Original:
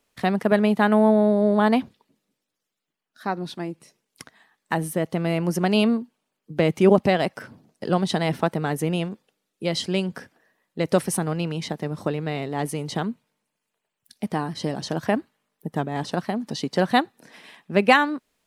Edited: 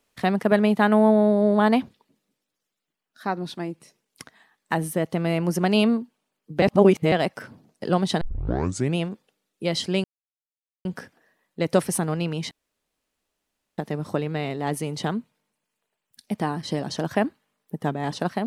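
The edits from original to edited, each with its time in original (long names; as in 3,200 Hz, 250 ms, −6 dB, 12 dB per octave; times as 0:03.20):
0:06.62–0:07.12: reverse
0:08.21: tape start 0.76 s
0:10.04: splice in silence 0.81 s
0:11.70: splice in room tone 1.27 s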